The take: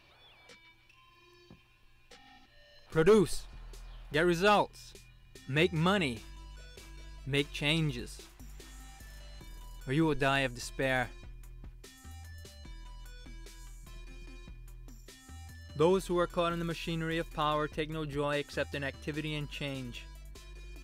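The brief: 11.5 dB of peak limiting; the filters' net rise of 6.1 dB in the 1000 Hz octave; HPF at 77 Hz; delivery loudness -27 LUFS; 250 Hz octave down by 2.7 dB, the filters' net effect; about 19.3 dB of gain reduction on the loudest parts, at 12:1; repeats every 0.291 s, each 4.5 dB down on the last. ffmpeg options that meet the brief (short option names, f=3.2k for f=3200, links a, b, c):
-af "highpass=77,equalizer=f=250:t=o:g=-5,equalizer=f=1k:t=o:g=8,acompressor=threshold=-37dB:ratio=12,alimiter=level_in=12.5dB:limit=-24dB:level=0:latency=1,volume=-12.5dB,aecho=1:1:291|582|873|1164|1455|1746|2037|2328|2619:0.596|0.357|0.214|0.129|0.0772|0.0463|0.0278|0.0167|0.01,volume=20dB"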